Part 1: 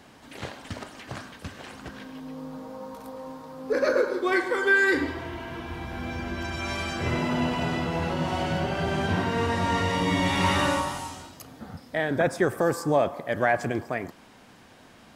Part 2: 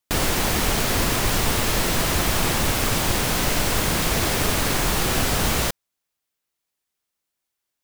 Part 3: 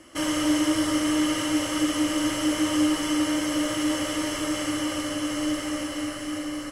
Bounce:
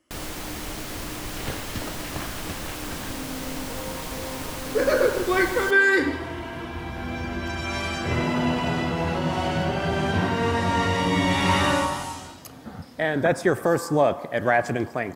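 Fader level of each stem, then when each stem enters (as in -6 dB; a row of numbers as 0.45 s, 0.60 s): +2.5 dB, -12.5 dB, -19.0 dB; 1.05 s, 0.00 s, 0.00 s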